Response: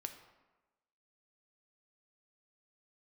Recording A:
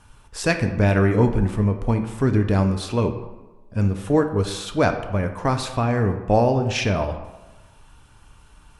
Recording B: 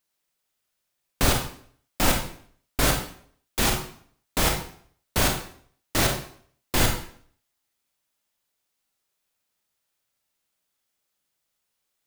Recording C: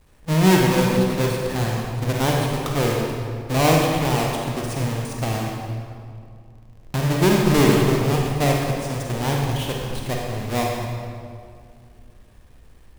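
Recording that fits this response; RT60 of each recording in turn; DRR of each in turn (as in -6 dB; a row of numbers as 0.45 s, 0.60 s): A; 1.1 s, 0.55 s, 2.3 s; 6.0 dB, 2.0 dB, -1.0 dB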